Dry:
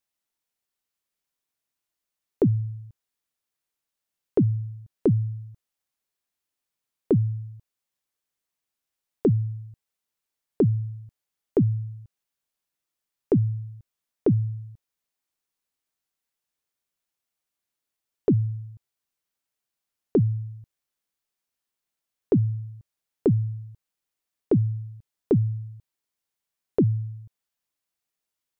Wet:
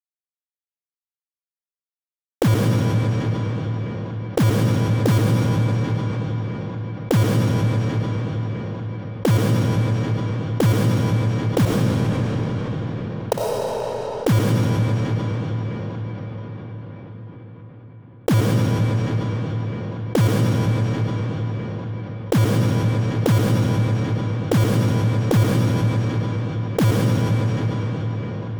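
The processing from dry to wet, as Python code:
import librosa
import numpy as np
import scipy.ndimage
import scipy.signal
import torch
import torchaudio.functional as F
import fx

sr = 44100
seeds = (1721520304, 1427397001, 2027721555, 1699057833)

y = scipy.signal.sosfilt(scipy.signal.butter(2, 1200.0, 'lowpass', fs=sr, output='sos'), x)
y = fx.peak_eq(y, sr, hz=880.0, db=11.0, octaves=0.38)
y = fx.level_steps(y, sr, step_db=23)
y = fx.highpass_res(y, sr, hz=670.0, q=4.9, at=(11.65, 13.69))
y = fx.env_flanger(y, sr, rest_ms=4.8, full_db=-19.5)
y = fx.quant_companded(y, sr, bits=4)
y = fx.room_flutter(y, sr, wall_m=9.8, rt60_s=0.21)
y = fx.rev_freeverb(y, sr, rt60_s=4.1, hf_ratio=0.8, predelay_ms=50, drr_db=-1.0)
y = fx.env_flatten(y, sr, amount_pct=50)
y = F.gain(torch.from_numpy(y), 6.0).numpy()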